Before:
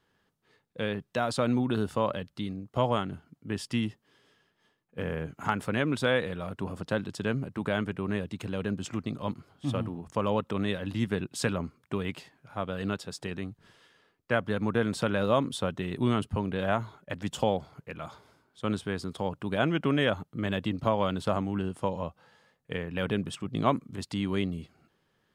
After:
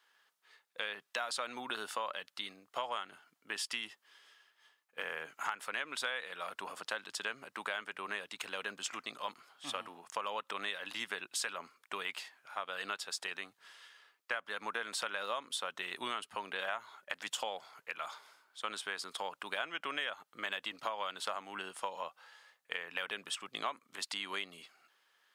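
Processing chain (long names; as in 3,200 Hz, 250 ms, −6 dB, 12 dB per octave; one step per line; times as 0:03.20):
high-pass filter 1,100 Hz 12 dB per octave
downward compressor 6 to 1, threshold −39 dBFS, peak gain reduction 13.5 dB
level +5 dB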